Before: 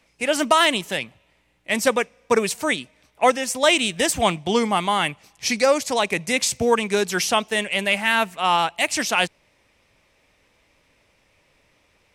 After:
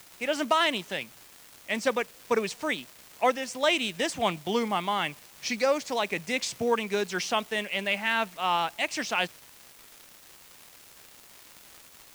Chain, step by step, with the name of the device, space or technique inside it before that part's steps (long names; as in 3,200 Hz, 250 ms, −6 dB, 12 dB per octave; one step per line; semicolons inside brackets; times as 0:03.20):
78 rpm shellac record (band-pass filter 130–5,900 Hz; surface crackle 290 per second −30 dBFS; white noise bed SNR 24 dB)
level −7 dB